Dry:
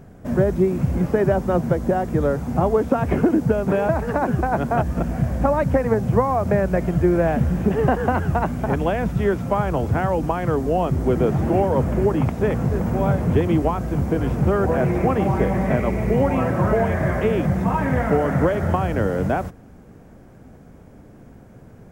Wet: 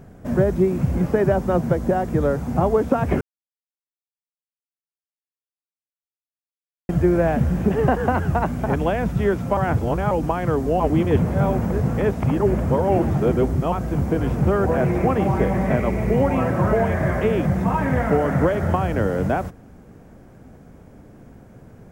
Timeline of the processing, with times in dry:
0:03.21–0:06.89: silence
0:09.57–0:10.11: reverse
0:10.80–0:13.72: reverse

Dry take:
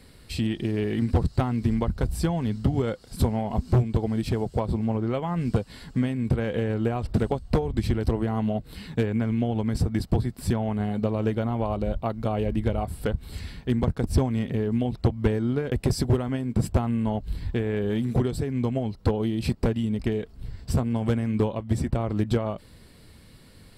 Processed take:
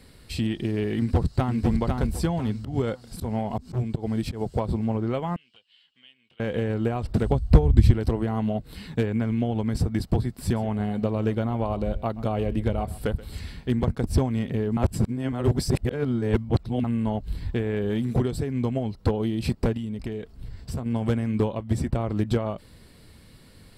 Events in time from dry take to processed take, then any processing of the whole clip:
0:00.98–0:01.61: delay throw 500 ms, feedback 30%, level −3.5 dB
0:02.34–0:04.41: volume swells 120 ms
0:05.36–0:06.40: resonant band-pass 3,000 Hz, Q 11
0:07.26–0:07.91: parametric band 60 Hz +15 dB 2.5 octaves
0:10.43–0:13.95: single-tap delay 129 ms −18.5 dB
0:14.77–0:16.84: reverse
0:19.77–0:20.86: downward compressor 2 to 1, threshold −32 dBFS

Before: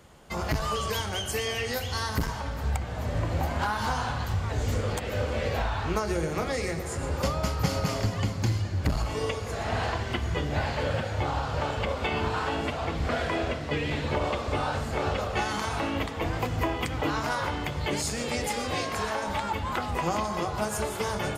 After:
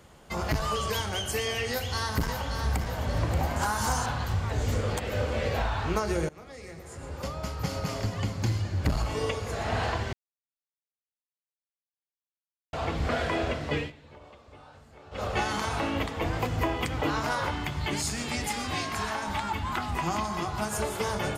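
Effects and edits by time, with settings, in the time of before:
0:01.70–0:02.83: delay throw 580 ms, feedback 50%, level −6.5 dB
0:03.56–0:04.06: high shelf with overshoot 5,200 Hz +10 dB, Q 1.5
0:06.29–0:08.87: fade in linear, from −21.5 dB
0:10.13–0:12.73: silence
0:13.78–0:15.25: duck −22.5 dB, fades 0.14 s
0:17.51–0:20.73: parametric band 510 Hz −14 dB 0.39 octaves

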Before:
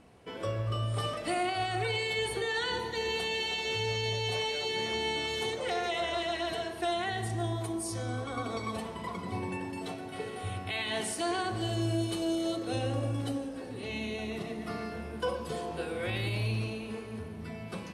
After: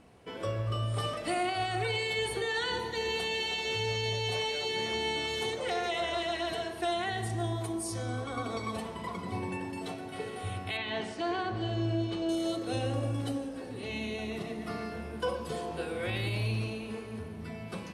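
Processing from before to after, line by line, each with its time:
0:10.77–0:12.29: high-frequency loss of the air 160 metres

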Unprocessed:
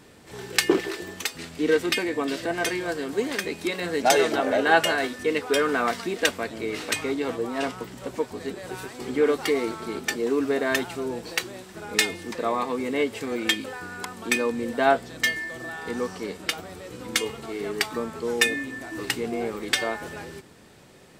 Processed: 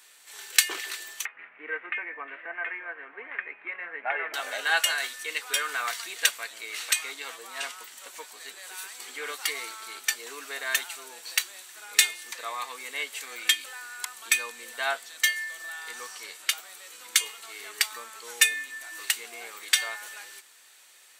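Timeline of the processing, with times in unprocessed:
0:01.25–0:04.34: Butterworth low-pass 2,300 Hz 48 dB per octave
whole clip: high-pass filter 1,400 Hz 12 dB per octave; high-shelf EQ 5,100 Hz +9.5 dB; notch filter 5,100 Hz, Q 11; level −1 dB

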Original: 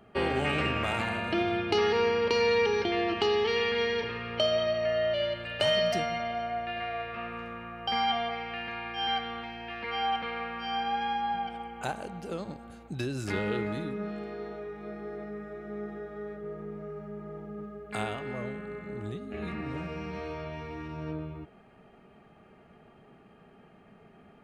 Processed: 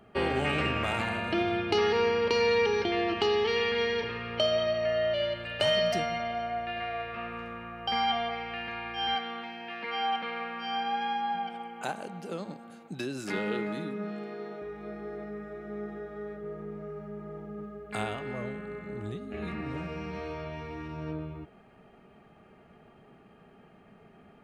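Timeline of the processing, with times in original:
0:09.15–0:14.62: Chebyshev high-pass filter 170 Hz, order 3

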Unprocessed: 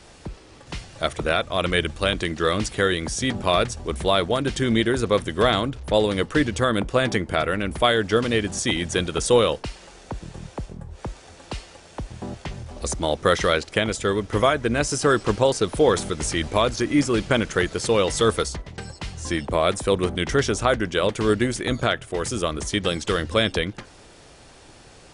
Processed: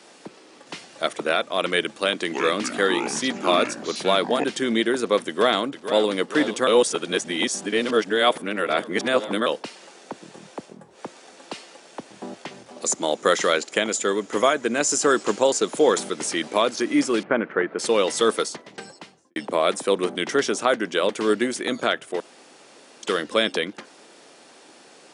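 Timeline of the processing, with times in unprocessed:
0:01.91–0:04.44: delay with pitch and tempo change per echo 279 ms, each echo −6 semitones, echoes 2, each echo −6 dB
0:05.26–0:06.08: delay throw 460 ms, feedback 65%, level −11.5 dB
0:06.67–0:09.46: reverse
0:12.81–0:15.98: parametric band 7,000 Hz +11.5 dB 0.24 octaves
0:17.23–0:17.79: low-pass filter 2,000 Hz 24 dB per octave
0:18.80–0:19.36: fade out and dull
0:22.20–0:23.03: fill with room tone
whole clip: high-pass filter 220 Hz 24 dB per octave

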